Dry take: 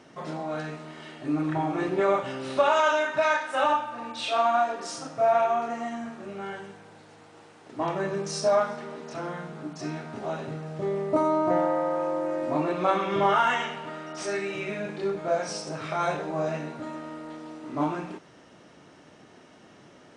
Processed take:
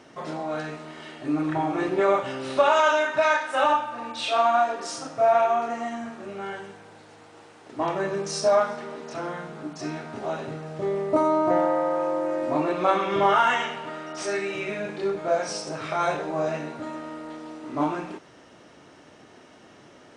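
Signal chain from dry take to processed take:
parametric band 170 Hz −4.5 dB 0.75 octaves
level +2.5 dB

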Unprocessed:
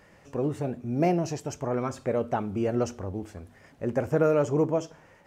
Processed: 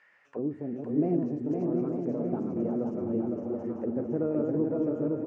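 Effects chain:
feedback delay that plays each chunk backwards 363 ms, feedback 45%, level −3 dB
envelope filter 270–2,000 Hz, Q 2.1, down, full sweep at −26.5 dBFS
bouncing-ball delay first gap 510 ms, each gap 0.75×, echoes 5

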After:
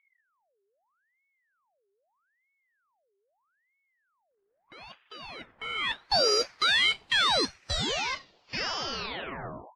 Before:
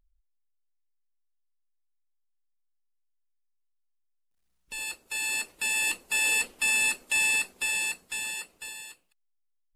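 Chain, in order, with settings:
turntable brake at the end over 2.72 s
low-pass filter sweep 1,100 Hz → 3,600 Hz, 0:05.41–0:06.31
ring modulator whose carrier an LFO sweeps 1,300 Hz, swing 70%, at 0.79 Hz

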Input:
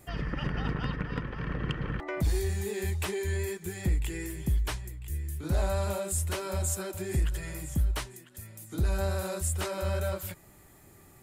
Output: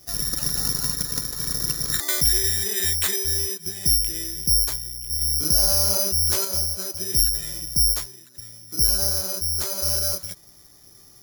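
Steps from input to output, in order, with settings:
0:01.91–0:03.16: parametric band 1,800 Hz +12.5 dB 1 octave
bad sample-rate conversion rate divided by 8×, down filtered, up zero stuff
0:05.21–0:06.45: envelope flattener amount 50%
level −2.5 dB

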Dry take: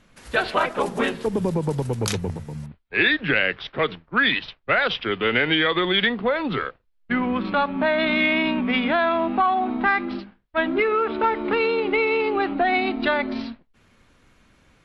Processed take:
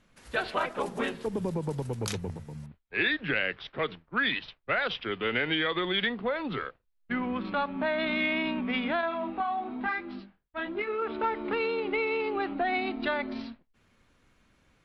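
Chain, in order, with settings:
0:09.01–0:11.02: chorus effect 1 Hz, delay 18 ms, depth 4.9 ms
level −8 dB

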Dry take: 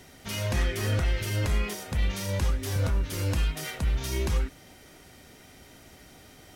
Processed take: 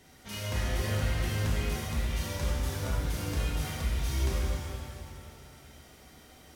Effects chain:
reverb with rising layers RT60 2.2 s, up +7 semitones, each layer −8 dB, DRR −4 dB
level −8.5 dB

